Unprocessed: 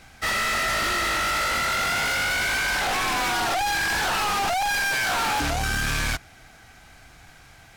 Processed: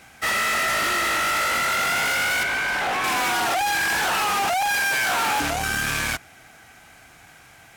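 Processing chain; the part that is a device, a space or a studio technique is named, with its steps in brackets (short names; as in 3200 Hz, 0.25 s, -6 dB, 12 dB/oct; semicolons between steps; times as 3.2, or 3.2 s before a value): exciter from parts (in parallel at -7 dB: HPF 2600 Hz 24 dB/oct + soft clip -27 dBFS, distortion -15 dB + HPF 3800 Hz 12 dB/oct); on the sum: HPF 180 Hz 6 dB/oct; 2.43–3.04 high shelf 4700 Hz -11.5 dB; gain +2 dB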